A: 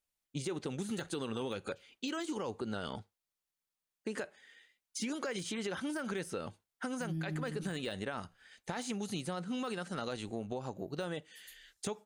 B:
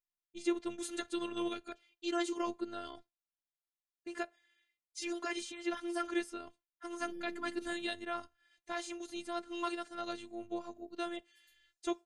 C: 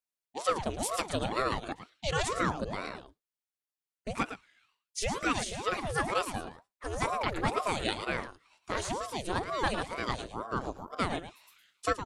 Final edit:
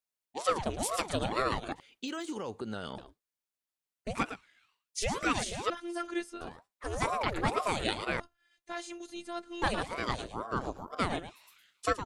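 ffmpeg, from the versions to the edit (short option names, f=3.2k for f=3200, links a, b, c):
-filter_complex "[1:a]asplit=2[a][b];[2:a]asplit=4[c][d][e][f];[c]atrim=end=1.802[g];[0:a]atrim=start=1.798:end=2.982[h];[d]atrim=start=2.978:end=5.702[i];[a]atrim=start=5.698:end=6.412[j];[e]atrim=start=6.408:end=8.202[k];[b]atrim=start=8.198:end=9.622[l];[f]atrim=start=9.618[m];[g][h]acrossfade=d=0.004:c1=hsin:c2=hsin[n];[n][i]acrossfade=d=0.004:c1=hsin:c2=hsin[o];[o][j]acrossfade=d=0.004:c1=hsin:c2=hsin[p];[p][k]acrossfade=d=0.004:c1=hsin:c2=hsin[q];[q][l]acrossfade=d=0.004:c1=hsin:c2=hsin[r];[r][m]acrossfade=d=0.004:c1=hsin:c2=hsin"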